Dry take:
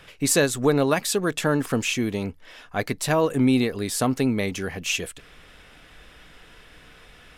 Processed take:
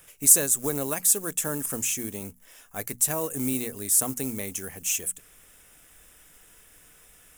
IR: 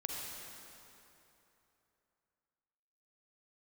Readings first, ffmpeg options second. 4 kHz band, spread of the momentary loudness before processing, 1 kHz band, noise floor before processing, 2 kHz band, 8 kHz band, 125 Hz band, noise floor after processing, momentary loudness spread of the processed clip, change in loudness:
−8.5 dB, 9 LU, −10.0 dB, −50 dBFS, −10.0 dB, +7.5 dB, −10.5 dB, −55 dBFS, 18 LU, −0.5 dB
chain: -af "acrusher=bits=6:mode=log:mix=0:aa=0.000001,bandreject=frequency=60:width_type=h:width=6,bandreject=frequency=120:width_type=h:width=6,bandreject=frequency=180:width_type=h:width=6,bandreject=frequency=240:width_type=h:width=6,aexciter=amount=7.6:drive=7.5:freq=6300,volume=-10dB"

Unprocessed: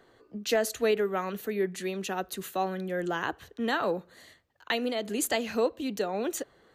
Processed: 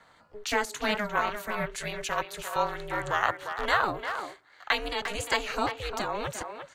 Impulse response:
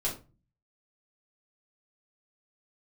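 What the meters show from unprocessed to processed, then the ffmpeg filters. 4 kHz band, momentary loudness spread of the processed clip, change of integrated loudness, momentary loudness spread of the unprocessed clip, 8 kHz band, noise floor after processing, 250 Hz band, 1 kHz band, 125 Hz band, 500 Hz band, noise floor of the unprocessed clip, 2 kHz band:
+3.0 dB, 7 LU, +0.5 dB, 7 LU, −2.5 dB, −59 dBFS, −6.0 dB, +5.0 dB, +0.5 dB, −4.5 dB, −62 dBFS, +5.5 dB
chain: -filter_complex "[0:a]deesser=0.75,equalizer=frequency=500:width_type=o:width=1:gain=-7,equalizer=frequency=1000:width_type=o:width=1:gain=12,equalizer=frequency=2000:width_type=o:width=1:gain=5,equalizer=frequency=4000:width_type=o:width=1:gain=4,equalizer=frequency=8000:width_type=o:width=1:gain=8,aeval=exprs='val(0)*sin(2*PI*210*n/s)':channel_layout=same,asplit=2[link_01][link_02];[link_02]adelay=350,highpass=300,lowpass=3400,asoftclip=type=hard:threshold=-17.5dB,volume=-7dB[link_03];[link_01][link_03]amix=inputs=2:normalize=0,acrossover=split=250|1800|2000[link_04][link_05][link_06][link_07];[link_06]acrusher=bits=5:mode=log:mix=0:aa=0.000001[link_08];[link_04][link_05][link_08][link_07]amix=inputs=4:normalize=0"

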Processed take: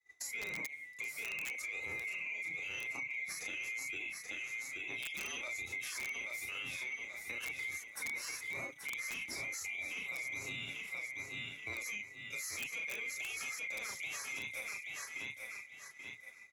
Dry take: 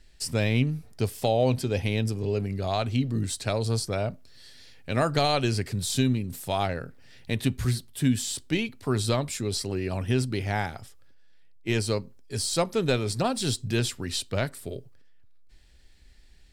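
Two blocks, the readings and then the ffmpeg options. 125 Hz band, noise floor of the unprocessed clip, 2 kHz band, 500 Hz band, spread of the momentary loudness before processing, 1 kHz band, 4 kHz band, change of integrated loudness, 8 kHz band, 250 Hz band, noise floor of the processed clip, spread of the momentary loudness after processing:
−33.5 dB, −53 dBFS, 0.0 dB, −26.5 dB, 8 LU, −21.5 dB, −13.0 dB, −12.0 dB, −9.0 dB, −29.5 dB, −54 dBFS, 4 LU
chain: -filter_complex "[0:a]afftfilt=real='real(if(lt(b,920),b+92*(1-2*mod(floor(b/92),2)),b),0)':imag='imag(if(lt(b,920),b+92*(1-2*mod(floor(b/92),2)),b),0)':win_size=2048:overlap=0.75,asplit=2[link_01][link_02];[link_02]adelay=34,volume=-3dB[link_03];[link_01][link_03]amix=inputs=2:normalize=0,acrossover=split=250[link_04][link_05];[link_04]acompressor=threshold=-37dB:ratio=10[link_06];[link_06][link_05]amix=inputs=2:normalize=0,flanger=delay=2.3:depth=5.3:regen=8:speed=0.52:shape=sinusoidal,highpass=frequency=63:width=0.5412,highpass=frequency=63:width=1.3066,lowshelf=frequency=210:gain=6.5,asplit=2[link_07][link_08];[link_08]aecho=0:1:831|1662|2493|3324:0.376|0.113|0.0338|0.0101[link_09];[link_07][link_09]amix=inputs=2:normalize=0,agate=range=-33dB:threshold=-43dB:ratio=3:detection=peak,adynamicequalizer=threshold=0.0112:dfrequency=1700:dqfactor=2.3:tfrequency=1700:tqfactor=2.3:attack=5:release=100:ratio=0.375:range=1.5:mode=cutabove:tftype=bell,aeval=exprs='(mod(5.62*val(0)+1,2)-1)/5.62':channel_layout=same,alimiter=level_in=1dB:limit=-24dB:level=0:latency=1:release=71,volume=-1dB,acompressor=threshold=-51dB:ratio=2,volume=3dB"

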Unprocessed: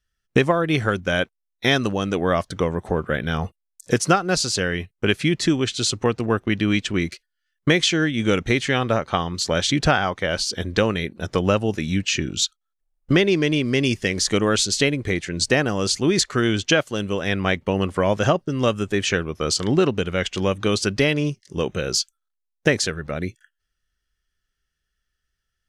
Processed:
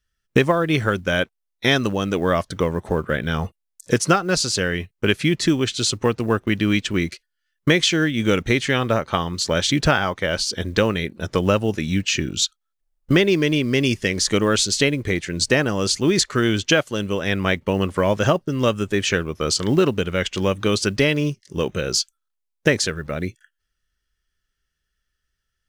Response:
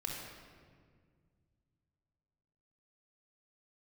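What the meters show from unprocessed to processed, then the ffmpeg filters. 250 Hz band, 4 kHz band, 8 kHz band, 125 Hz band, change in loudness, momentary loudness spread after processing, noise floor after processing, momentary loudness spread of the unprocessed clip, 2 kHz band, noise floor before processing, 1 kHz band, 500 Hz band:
+1.0 dB, +1.0 dB, +1.0 dB, +1.0 dB, +1.0 dB, 6 LU, −78 dBFS, 6 LU, +1.0 dB, −79 dBFS, 0.0 dB, +1.0 dB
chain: -af "bandreject=frequency=740:width=12,acrusher=bits=9:mode=log:mix=0:aa=0.000001,volume=1dB"

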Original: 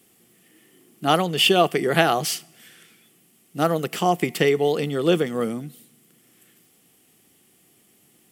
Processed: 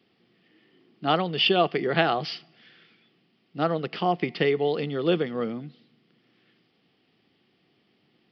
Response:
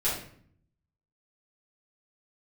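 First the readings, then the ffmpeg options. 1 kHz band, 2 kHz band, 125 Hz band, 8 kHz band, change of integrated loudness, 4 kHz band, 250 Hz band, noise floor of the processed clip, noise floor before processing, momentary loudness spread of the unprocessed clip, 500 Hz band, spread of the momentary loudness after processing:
−4.0 dB, −4.0 dB, −4.0 dB, below −25 dB, −4.0 dB, −4.0 dB, −4.0 dB, −68 dBFS, −60 dBFS, 11 LU, −4.0 dB, 11 LU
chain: -af "highpass=76,aresample=11025,aresample=44100,volume=-4dB"

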